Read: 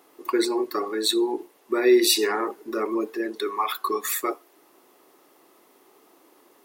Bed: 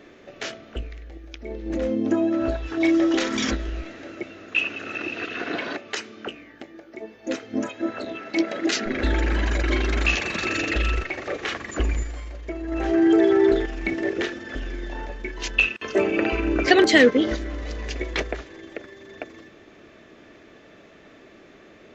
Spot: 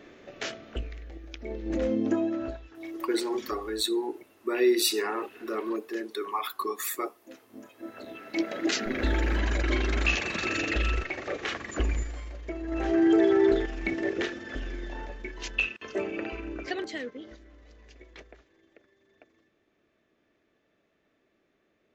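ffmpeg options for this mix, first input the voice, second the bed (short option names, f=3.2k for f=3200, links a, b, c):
-filter_complex "[0:a]adelay=2750,volume=-5.5dB[a];[1:a]volume=14dB,afade=t=out:st=1.95:d=0.76:silence=0.125893,afade=t=in:st=7.68:d=0.98:silence=0.149624,afade=t=out:st=14.61:d=2.41:silence=0.11885[b];[a][b]amix=inputs=2:normalize=0"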